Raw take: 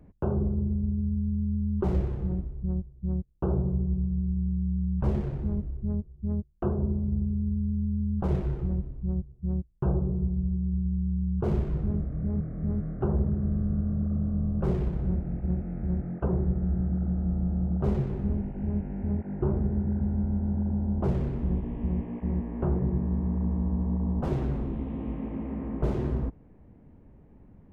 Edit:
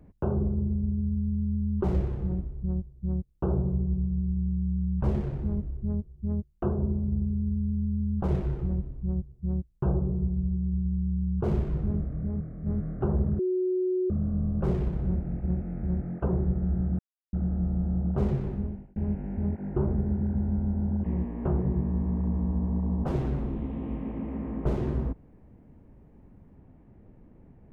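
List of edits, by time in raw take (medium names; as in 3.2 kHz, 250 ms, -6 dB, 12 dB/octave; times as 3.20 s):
12.06–12.66 s: fade out, to -6 dB
13.39–14.10 s: bleep 368 Hz -23.5 dBFS
16.99 s: insert silence 0.34 s
18.13–18.62 s: fade out
20.70–22.21 s: delete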